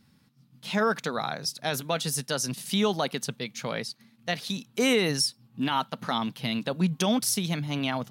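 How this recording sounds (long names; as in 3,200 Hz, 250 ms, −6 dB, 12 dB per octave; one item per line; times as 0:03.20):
background noise floor −63 dBFS
spectral slope −3.5 dB per octave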